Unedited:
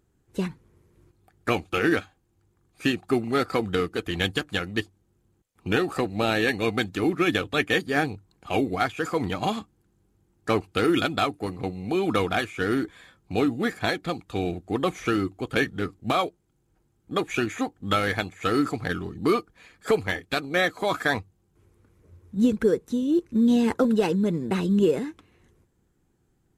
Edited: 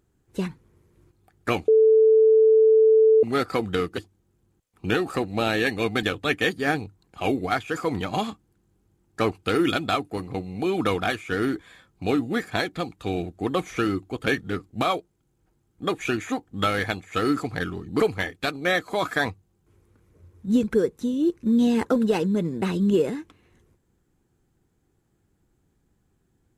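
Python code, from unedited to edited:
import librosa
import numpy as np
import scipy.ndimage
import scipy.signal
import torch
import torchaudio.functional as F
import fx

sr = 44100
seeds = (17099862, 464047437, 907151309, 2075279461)

y = fx.edit(x, sr, fx.bleep(start_s=1.68, length_s=1.55, hz=440.0, db=-12.5),
    fx.cut(start_s=3.98, length_s=0.82),
    fx.cut(start_s=6.85, length_s=0.47),
    fx.cut(start_s=19.29, length_s=0.6), tone=tone)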